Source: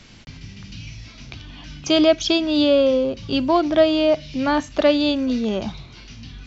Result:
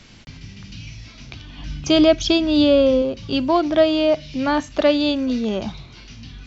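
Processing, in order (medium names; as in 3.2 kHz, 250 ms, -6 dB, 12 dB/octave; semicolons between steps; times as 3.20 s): 1.58–3.02 s: bass shelf 170 Hz +10.5 dB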